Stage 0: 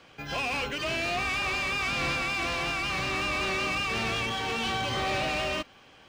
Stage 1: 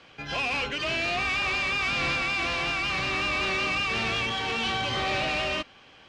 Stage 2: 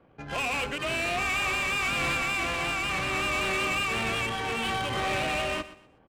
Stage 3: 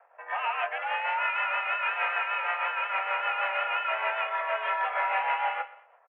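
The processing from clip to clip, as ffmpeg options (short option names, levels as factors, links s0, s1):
-af "lowpass=3600,aemphasis=mode=production:type=75kf"
-af "adynamicsmooth=sensitivity=3.5:basefreq=670,aecho=1:1:123|246|369:0.168|0.047|0.0132"
-filter_complex "[0:a]highpass=f=400:t=q:w=0.5412,highpass=f=400:t=q:w=1.307,lowpass=f=2100:t=q:w=0.5176,lowpass=f=2100:t=q:w=0.7071,lowpass=f=2100:t=q:w=1.932,afreqshift=200,tremolo=f=6.4:d=0.46,asplit=2[s0][s1];[s1]adelay=23,volume=0.282[s2];[s0][s2]amix=inputs=2:normalize=0,volume=1.78"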